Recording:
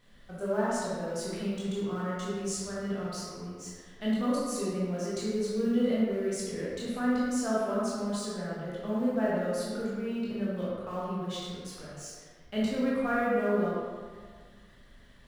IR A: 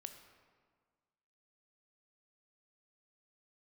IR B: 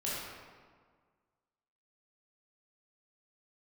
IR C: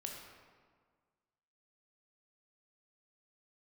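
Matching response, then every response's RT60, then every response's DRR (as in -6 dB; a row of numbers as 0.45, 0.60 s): B; 1.7, 1.7, 1.7 s; 7.0, -8.0, 0.5 dB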